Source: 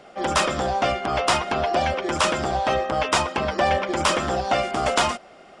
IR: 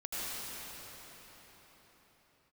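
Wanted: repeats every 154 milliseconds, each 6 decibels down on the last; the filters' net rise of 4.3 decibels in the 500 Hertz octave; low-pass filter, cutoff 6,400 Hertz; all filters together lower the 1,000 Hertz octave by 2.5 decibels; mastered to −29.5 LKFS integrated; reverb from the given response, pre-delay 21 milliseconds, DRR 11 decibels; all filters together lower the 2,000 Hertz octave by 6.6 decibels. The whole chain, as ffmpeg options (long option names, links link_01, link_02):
-filter_complex "[0:a]lowpass=6400,equalizer=frequency=500:width_type=o:gain=8,equalizer=frequency=1000:width_type=o:gain=-6.5,equalizer=frequency=2000:width_type=o:gain=-7,aecho=1:1:154|308|462|616|770|924:0.501|0.251|0.125|0.0626|0.0313|0.0157,asplit=2[link_01][link_02];[1:a]atrim=start_sample=2205,adelay=21[link_03];[link_02][link_03]afir=irnorm=-1:irlink=0,volume=-16dB[link_04];[link_01][link_04]amix=inputs=2:normalize=0,volume=-8.5dB"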